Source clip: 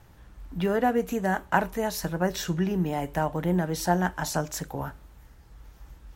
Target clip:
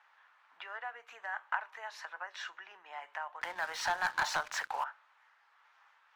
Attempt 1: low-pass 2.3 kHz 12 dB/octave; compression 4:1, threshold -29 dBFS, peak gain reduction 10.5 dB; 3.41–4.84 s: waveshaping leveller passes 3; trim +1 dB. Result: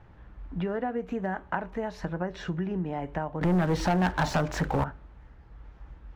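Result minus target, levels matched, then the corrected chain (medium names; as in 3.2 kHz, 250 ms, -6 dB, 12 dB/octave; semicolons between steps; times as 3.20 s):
1 kHz band -3.0 dB
low-pass 2.3 kHz 12 dB/octave; compression 4:1, threshold -29 dBFS, peak gain reduction 10.5 dB; high-pass 990 Hz 24 dB/octave; 3.41–4.84 s: waveshaping leveller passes 3; trim +1 dB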